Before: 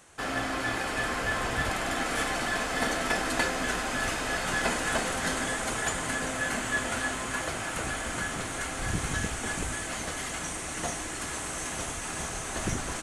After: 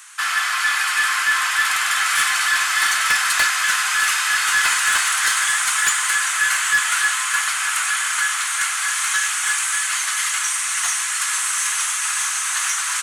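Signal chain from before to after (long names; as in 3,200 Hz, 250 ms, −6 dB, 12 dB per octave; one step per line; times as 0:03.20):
Butterworth high-pass 1,100 Hz 36 dB per octave
high-shelf EQ 12,000 Hz +9 dB
sine wavefolder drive 7 dB, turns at −14 dBFS
level +3 dB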